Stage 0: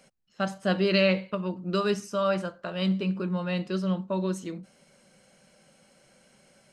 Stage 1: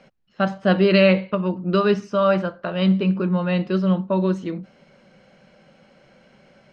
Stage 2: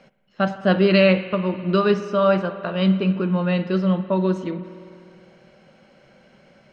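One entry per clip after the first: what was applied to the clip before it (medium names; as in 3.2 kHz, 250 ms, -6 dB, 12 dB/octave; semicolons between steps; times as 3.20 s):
distance through air 220 m; trim +8.5 dB
spring tank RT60 2.5 s, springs 51 ms, chirp 80 ms, DRR 11.5 dB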